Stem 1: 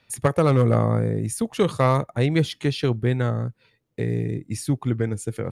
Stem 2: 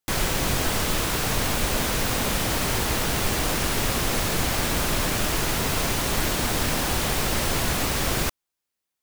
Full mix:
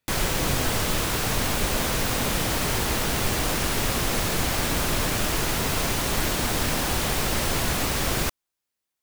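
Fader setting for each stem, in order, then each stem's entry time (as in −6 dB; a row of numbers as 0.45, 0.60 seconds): −19.0, −0.5 decibels; 0.00, 0.00 seconds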